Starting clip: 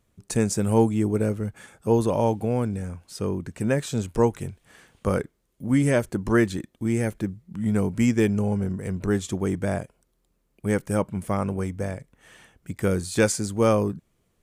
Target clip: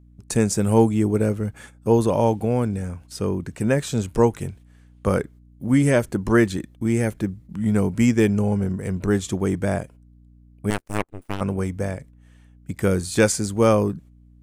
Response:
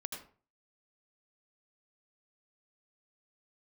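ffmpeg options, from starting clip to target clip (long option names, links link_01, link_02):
-filter_complex "[0:a]agate=range=-15dB:threshold=-46dB:ratio=16:detection=peak,aeval=exprs='val(0)+0.00251*(sin(2*PI*60*n/s)+sin(2*PI*2*60*n/s)/2+sin(2*PI*3*60*n/s)/3+sin(2*PI*4*60*n/s)/4+sin(2*PI*5*60*n/s)/5)':channel_layout=same,asettb=1/sr,asplit=3[link_01][link_02][link_03];[link_01]atrim=end=10.704[link_04];[link_02]atrim=start=10.7:end=11.41,asetpts=PTS-STARTPTS,afade=type=in:duration=0.004:curve=qsin,afade=type=out:start_time=0.706:duration=0.004:curve=qsin,aeval=exprs='0.282*(cos(1*acos(clip(val(0)/0.282,-1,1)))-cos(1*PI/2))+0.1*(cos(3*acos(clip(val(0)/0.282,-1,1)))-cos(3*PI/2))+0.02*(cos(4*acos(clip(val(0)/0.282,-1,1)))-cos(4*PI/2))+0.00398*(cos(5*acos(clip(val(0)/0.282,-1,1)))-cos(5*PI/2))+0.00891*(cos(8*acos(clip(val(0)/0.282,-1,1)))-cos(8*PI/2))':channel_layout=same[link_05];[link_03]atrim=start=11.406[link_06];[link_04][link_05]acrossfade=duration=0.004:curve1=hsin:curve2=qsin[link_07];[link_07][link_06]acrossfade=duration=0.004:curve1=qsin:curve2=hsin,volume=3dB"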